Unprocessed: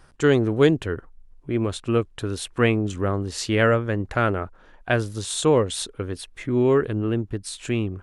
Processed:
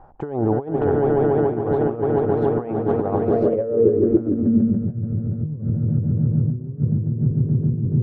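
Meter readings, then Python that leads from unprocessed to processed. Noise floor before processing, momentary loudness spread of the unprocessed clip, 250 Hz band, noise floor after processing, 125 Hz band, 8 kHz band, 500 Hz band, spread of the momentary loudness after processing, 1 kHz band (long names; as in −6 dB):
−52 dBFS, 12 LU, +4.0 dB, −32 dBFS, +5.5 dB, below −40 dB, +2.5 dB, 6 LU, +1.0 dB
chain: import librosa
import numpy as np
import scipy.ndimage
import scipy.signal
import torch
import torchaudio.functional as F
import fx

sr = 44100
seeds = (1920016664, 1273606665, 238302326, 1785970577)

y = fx.echo_swell(x, sr, ms=143, loudest=8, wet_db=-9.5)
y = fx.over_compress(y, sr, threshold_db=-22.0, ratio=-0.5)
y = fx.filter_sweep_lowpass(y, sr, from_hz=800.0, to_hz=160.0, start_s=3.19, end_s=4.98, q=5.9)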